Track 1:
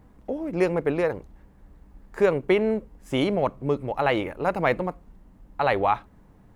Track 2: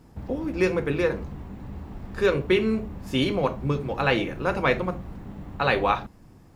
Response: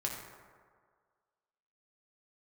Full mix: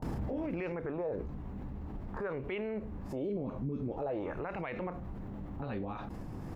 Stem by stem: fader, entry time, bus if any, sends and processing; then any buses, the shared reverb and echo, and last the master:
-1.0 dB, 0.00 s, no send, compression 2.5:1, threshold -24 dBFS, peak gain reduction 7 dB; LFO low-pass sine 0.48 Hz 220–2700 Hz
-12.0 dB, 24 ms, polarity flipped, no send, treble shelf 2.4 kHz -9 dB; level flattener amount 100%; auto duck -13 dB, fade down 0.90 s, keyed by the first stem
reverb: none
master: peak limiter -28.5 dBFS, peak gain reduction 16.5 dB

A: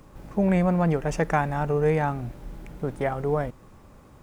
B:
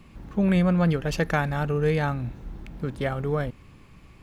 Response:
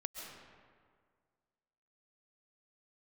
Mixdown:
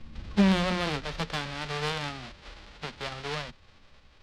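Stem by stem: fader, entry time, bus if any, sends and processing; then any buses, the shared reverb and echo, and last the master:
-1.5 dB, 0.00 s, no send, formants flattened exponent 0.1; low-pass 4.8 kHz 24 dB/octave; valve stage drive 16 dB, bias 0.8
-3.0 dB, 0.00 s, polarity flipped, no send, tilt EQ -3 dB/octave; three-phase chorus; auto duck -16 dB, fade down 1.70 s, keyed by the first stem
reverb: none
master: peaking EQ 6.2 kHz -4 dB 0.77 oct

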